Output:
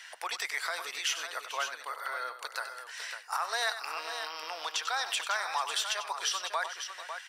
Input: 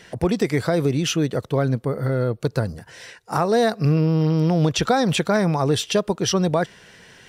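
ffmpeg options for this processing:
-af "highpass=f=1000:w=0.5412,highpass=f=1000:w=1.3066,alimiter=limit=0.1:level=0:latency=1:release=218,aecho=1:1:95|442|551:0.282|0.158|0.376"

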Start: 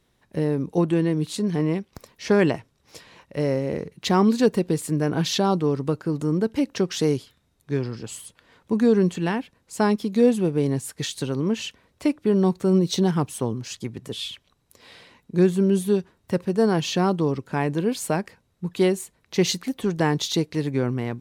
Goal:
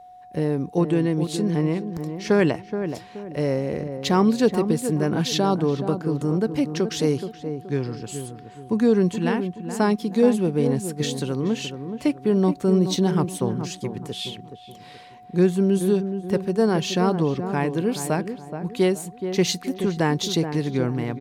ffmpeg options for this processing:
-filter_complex "[0:a]aeval=exprs='val(0)+0.00708*sin(2*PI*730*n/s)':c=same,asplit=2[s0][s1];[s1]adelay=425,lowpass=f=1100:p=1,volume=0.398,asplit=2[s2][s3];[s3]adelay=425,lowpass=f=1100:p=1,volume=0.38,asplit=2[s4][s5];[s5]adelay=425,lowpass=f=1100:p=1,volume=0.38,asplit=2[s6][s7];[s7]adelay=425,lowpass=f=1100:p=1,volume=0.38[s8];[s0][s2][s4][s6][s8]amix=inputs=5:normalize=0"

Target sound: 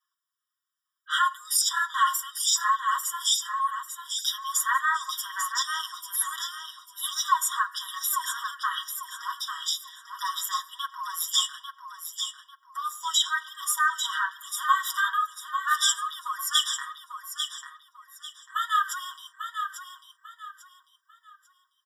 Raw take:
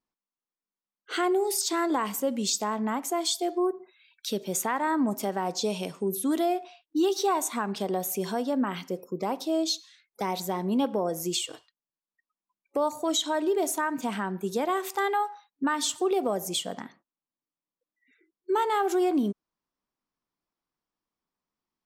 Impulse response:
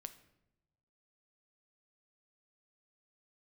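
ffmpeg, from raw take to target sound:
-filter_complex "[0:a]flanger=delay=1.5:depth=8.6:regen=-41:speed=1.1:shape=triangular,asplit=2[s0][s1];[s1]acompressor=threshold=0.0141:ratio=6,volume=0.794[s2];[s0][s2]amix=inputs=2:normalize=0,aecho=1:1:6.4:0.8,asplit=2[s3][s4];[s4]aecho=0:1:845|1690|2535|3380:0.422|0.122|0.0355|0.0103[s5];[s3][s5]amix=inputs=2:normalize=0,afftfilt=real='re*eq(mod(floor(b*sr/1024/970),2),1)':imag='im*eq(mod(floor(b*sr/1024/970),2),1)':win_size=1024:overlap=0.75,volume=2.37"

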